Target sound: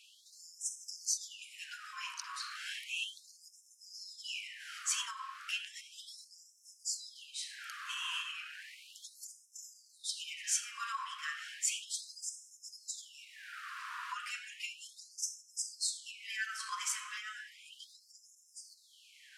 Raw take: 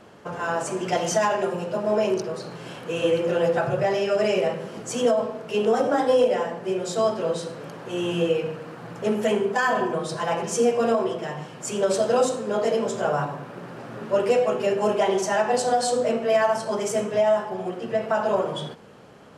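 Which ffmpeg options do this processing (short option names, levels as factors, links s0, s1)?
-filter_complex "[0:a]acrossover=split=180[s0][s1];[s1]acompressor=threshold=0.0316:ratio=2.5[s2];[s0][s2]amix=inputs=2:normalize=0,afftfilt=real='re*gte(b*sr/1024,940*pow(5200/940,0.5+0.5*sin(2*PI*0.34*pts/sr)))':imag='im*gte(b*sr/1024,940*pow(5200/940,0.5+0.5*sin(2*PI*0.34*pts/sr)))':win_size=1024:overlap=0.75,volume=1.26"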